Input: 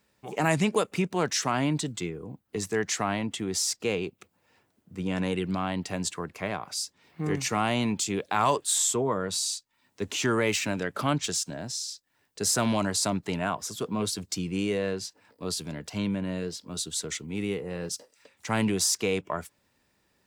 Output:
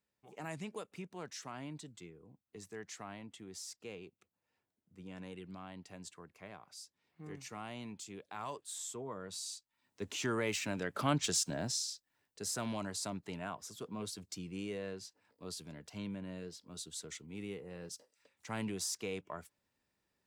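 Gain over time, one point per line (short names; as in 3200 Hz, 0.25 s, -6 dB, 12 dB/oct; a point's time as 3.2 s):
8.73 s -19 dB
10.03 s -9.5 dB
10.56 s -9.5 dB
11.65 s -1 dB
12.44 s -13 dB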